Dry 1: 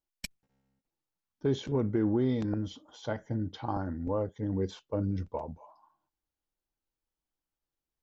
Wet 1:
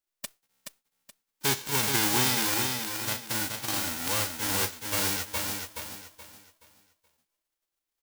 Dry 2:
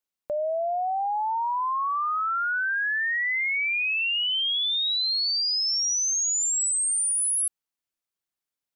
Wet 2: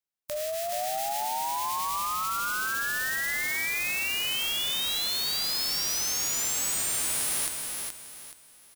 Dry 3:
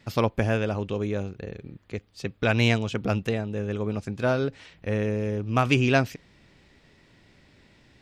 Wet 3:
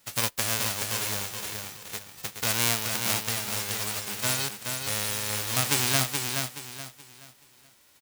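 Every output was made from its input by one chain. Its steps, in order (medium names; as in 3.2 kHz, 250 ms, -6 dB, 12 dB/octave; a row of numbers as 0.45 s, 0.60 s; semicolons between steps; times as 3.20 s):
formants flattened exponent 0.1; on a send: feedback delay 425 ms, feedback 31%, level -5 dB; on the sum: normalise loudness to -27 LUFS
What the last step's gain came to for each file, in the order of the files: +1.5 dB, -4.5 dB, -4.0 dB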